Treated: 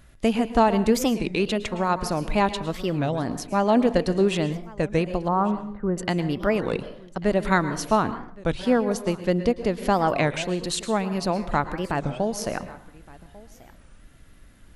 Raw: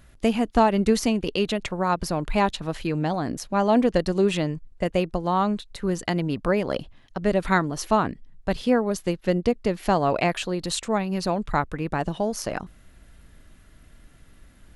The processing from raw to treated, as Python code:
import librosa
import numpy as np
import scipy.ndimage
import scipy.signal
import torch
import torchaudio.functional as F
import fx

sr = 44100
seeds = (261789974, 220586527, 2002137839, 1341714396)

y = fx.lowpass(x, sr, hz=1500.0, slope=24, at=(5.28, 5.98))
y = y + 10.0 ** (-22.0 / 20.0) * np.pad(y, (int(1144 * sr / 1000.0), 0))[:len(y)]
y = fx.rev_plate(y, sr, seeds[0], rt60_s=0.56, hf_ratio=0.65, predelay_ms=100, drr_db=12.0)
y = fx.record_warp(y, sr, rpm=33.33, depth_cents=250.0)